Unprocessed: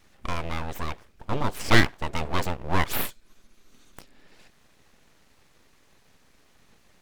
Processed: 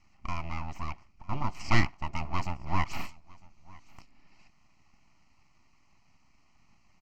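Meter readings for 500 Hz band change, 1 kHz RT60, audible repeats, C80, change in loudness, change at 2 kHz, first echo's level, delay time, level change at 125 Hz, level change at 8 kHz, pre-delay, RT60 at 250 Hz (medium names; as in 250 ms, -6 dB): -12.5 dB, no reverb, 1, no reverb, -6.5 dB, -8.0 dB, -24.0 dB, 953 ms, -3.5 dB, -11.5 dB, no reverb, no reverb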